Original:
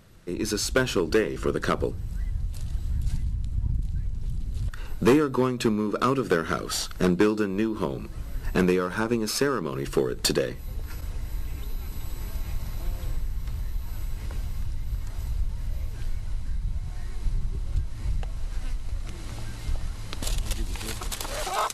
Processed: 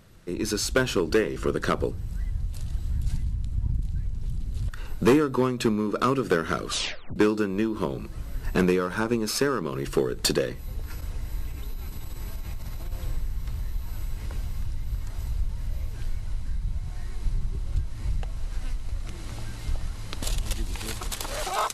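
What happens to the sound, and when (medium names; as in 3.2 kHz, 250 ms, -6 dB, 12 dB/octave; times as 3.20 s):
6.67 s: tape stop 0.49 s
11.48–12.92 s: compression, threshold -28 dBFS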